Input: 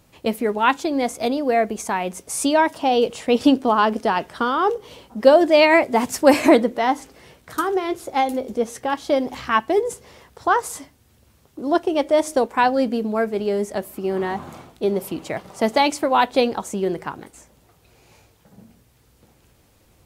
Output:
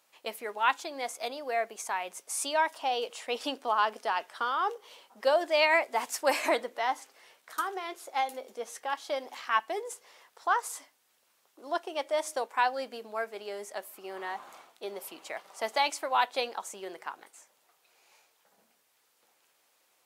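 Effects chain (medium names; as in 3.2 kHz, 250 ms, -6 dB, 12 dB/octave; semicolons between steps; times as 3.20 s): high-pass 760 Hz 12 dB/octave; trim -7 dB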